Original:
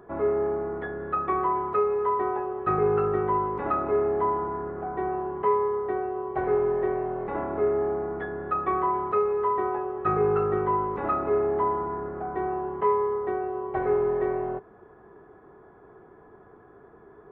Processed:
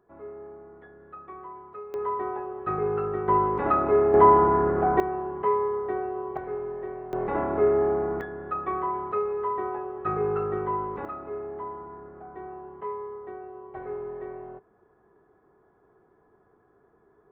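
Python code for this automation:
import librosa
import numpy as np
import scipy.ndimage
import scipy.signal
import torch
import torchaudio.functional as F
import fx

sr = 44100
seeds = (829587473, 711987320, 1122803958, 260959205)

y = fx.gain(x, sr, db=fx.steps((0.0, -16.5), (1.94, -4.0), (3.28, 3.5), (4.14, 10.0), (5.0, -1.0), (6.37, -9.0), (7.13, 3.0), (8.21, -3.5), (11.05, -11.0)))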